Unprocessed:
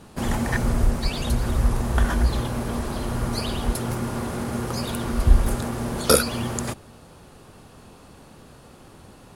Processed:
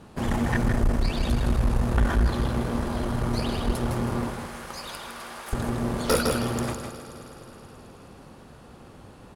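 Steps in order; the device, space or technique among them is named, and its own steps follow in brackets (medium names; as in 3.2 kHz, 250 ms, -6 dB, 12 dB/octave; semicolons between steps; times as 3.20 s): 4.30–5.53 s: Bessel high-pass 1.2 kHz, order 2; multi-head delay 106 ms, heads second and third, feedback 64%, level -17 dB; delay 158 ms -6.5 dB; tube preamp driven hard (valve stage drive 16 dB, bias 0.55; treble shelf 4.4 kHz -8 dB); trim +1.5 dB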